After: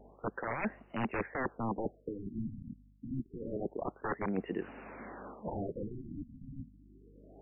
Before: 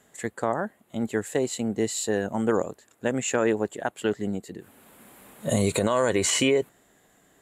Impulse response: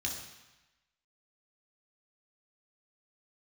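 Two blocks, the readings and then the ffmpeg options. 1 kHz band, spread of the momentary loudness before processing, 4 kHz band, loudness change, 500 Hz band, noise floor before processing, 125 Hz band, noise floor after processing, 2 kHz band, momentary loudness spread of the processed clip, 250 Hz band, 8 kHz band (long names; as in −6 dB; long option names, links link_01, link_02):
−8.0 dB, 13 LU, below −25 dB, −13.0 dB, −15.0 dB, −62 dBFS, −9.5 dB, −62 dBFS, −10.5 dB, 13 LU, −11.0 dB, below −40 dB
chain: -filter_complex "[0:a]acrossover=split=180 5100:gain=0.112 1 0.224[link_01][link_02][link_03];[link_01][link_02][link_03]amix=inputs=3:normalize=0,aeval=exprs='(mod(15*val(0)+1,2)-1)/15':channel_layout=same,aeval=exprs='val(0)+0.000501*(sin(2*PI*50*n/s)+sin(2*PI*2*50*n/s)/2+sin(2*PI*3*50*n/s)/3+sin(2*PI*4*50*n/s)/4+sin(2*PI*5*50*n/s)/5)':channel_layout=same,areverse,acompressor=threshold=-38dB:ratio=12,areverse,afftfilt=real='re*lt(b*sr/1024,270*pow(3000/270,0.5+0.5*sin(2*PI*0.27*pts/sr)))':imag='im*lt(b*sr/1024,270*pow(3000/270,0.5+0.5*sin(2*PI*0.27*pts/sr)))':win_size=1024:overlap=0.75,volume=7.5dB"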